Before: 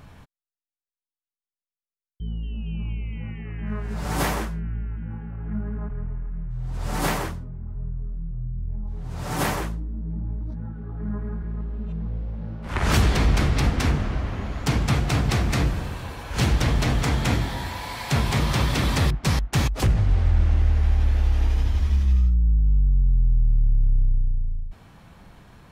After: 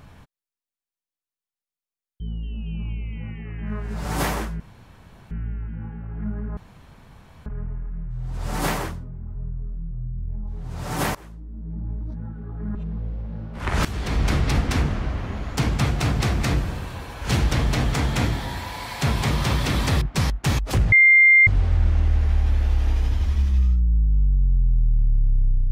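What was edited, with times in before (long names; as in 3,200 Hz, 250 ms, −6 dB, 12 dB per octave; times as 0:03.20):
0:04.60: splice in room tone 0.71 s
0:05.86: splice in room tone 0.89 s
0:09.55–0:10.30: fade in, from −22.5 dB
0:11.15–0:11.84: remove
0:12.94–0:13.42: fade in, from −18 dB
0:20.01: insert tone 2,100 Hz −9.5 dBFS 0.55 s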